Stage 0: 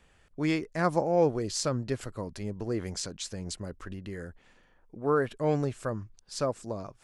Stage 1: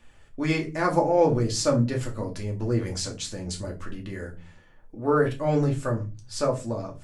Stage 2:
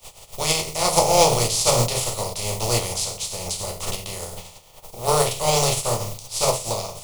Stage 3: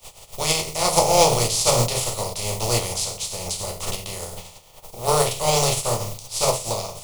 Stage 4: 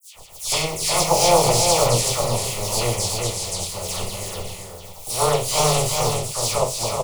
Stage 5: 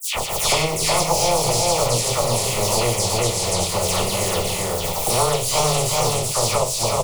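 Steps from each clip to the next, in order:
flange 0.75 Hz, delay 0.3 ms, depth 5.9 ms, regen +75%; reverberation RT60 0.30 s, pre-delay 3 ms, DRR -0.5 dB; trim +6 dB
spectral contrast reduction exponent 0.39; static phaser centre 670 Hz, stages 4; trim +6.5 dB
no audible change
phase dispersion lows, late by 143 ms, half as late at 2.5 kHz; on a send: delay 375 ms -4 dB
three bands compressed up and down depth 100%

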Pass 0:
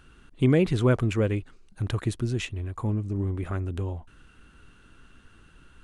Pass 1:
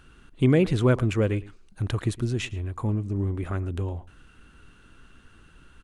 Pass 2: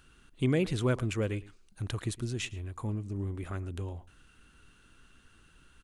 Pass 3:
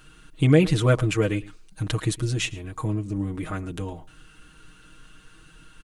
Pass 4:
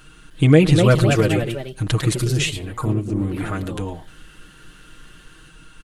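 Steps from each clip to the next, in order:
echo from a far wall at 19 m, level -20 dB; trim +1 dB
treble shelf 2.9 kHz +8.5 dB; trim -8 dB
comb 6.4 ms, depth 96%; trim +6.5 dB
ever faster or slower copies 308 ms, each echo +2 st, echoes 2, each echo -6 dB; trim +4.5 dB

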